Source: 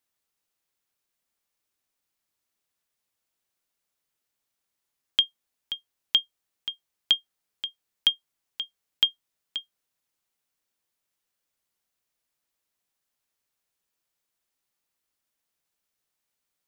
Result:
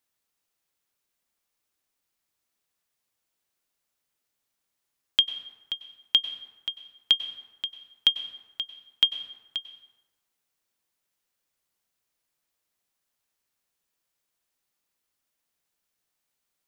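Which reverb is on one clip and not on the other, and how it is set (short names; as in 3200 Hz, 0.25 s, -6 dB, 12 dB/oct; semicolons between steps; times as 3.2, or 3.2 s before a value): plate-style reverb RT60 1.2 s, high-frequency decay 0.55×, pre-delay 85 ms, DRR 11 dB; gain +1 dB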